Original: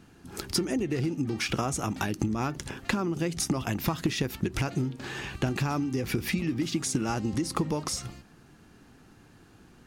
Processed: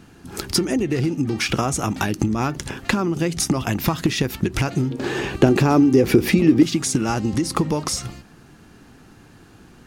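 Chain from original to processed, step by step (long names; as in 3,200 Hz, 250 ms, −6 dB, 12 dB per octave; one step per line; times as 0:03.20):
0:04.91–0:06.63: parametric band 400 Hz +11 dB 1.7 octaves
level +7.5 dB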